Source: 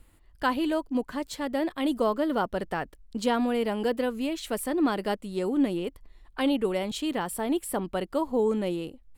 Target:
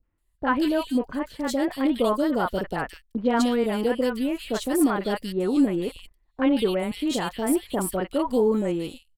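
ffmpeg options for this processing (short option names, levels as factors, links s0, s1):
-filter_complex "[0:a]acrossover=split=730|2600[s0][s1][s2];[s1]adelay=30[s3];[s2]adelay=180[s4];[s0][s3][s4]amix=inputs=3:normalize=0,agate=range=0.112:threshold=0.00631:ratio=16:detection=peak,volume=1.68"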